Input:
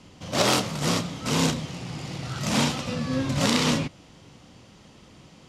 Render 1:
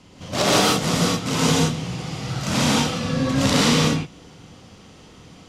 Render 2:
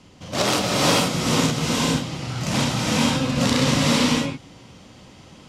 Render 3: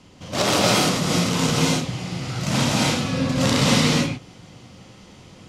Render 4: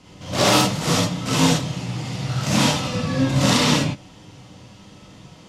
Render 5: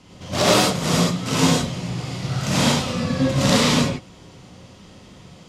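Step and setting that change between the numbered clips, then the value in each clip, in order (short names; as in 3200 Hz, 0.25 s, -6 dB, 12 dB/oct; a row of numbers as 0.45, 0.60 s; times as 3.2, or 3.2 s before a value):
non-linear reverb, gate: 200, 510, 320, 90, 130 ms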